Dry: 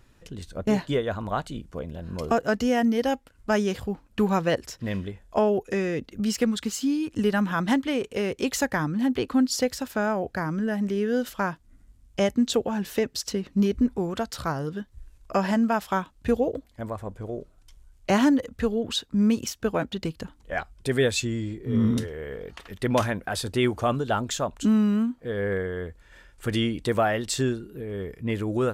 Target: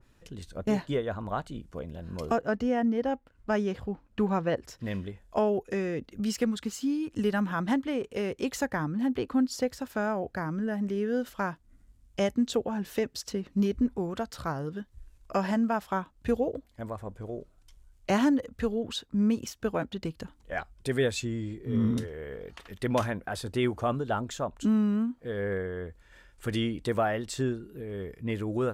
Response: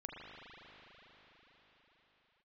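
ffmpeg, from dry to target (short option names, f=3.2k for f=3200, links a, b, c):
-filter_complex "[0:a]asettb=1/sr,asplit=3[a][b][c];[a]atrim=end=2.364[d];[b]atrim=start=2.36:end=4.65,asetpts=PTS-STARTPTS,afade=t=in:d=0.004:c=qsin,afade=t=out:st=2.286:d=0.004:c=qsin,lowpass=f=2.7k:p=1[e];[c]atrim=start=4.646[f];[d][e]acrossfade=d=0.004:c1=hsin:c2=qsin[g];[g][f]acrossfade=d=0.004:c1=qsin:c2=hsin,adynamicequalizer=threshold=0.00794:dfrequency=2000:dqfactor=0.7:tfrequency=2000:tqfactor=0.7:attack=5:release=100:ratio=0.375:range=4:mode=cutabove:tftype=highshelf,volume=-4dB"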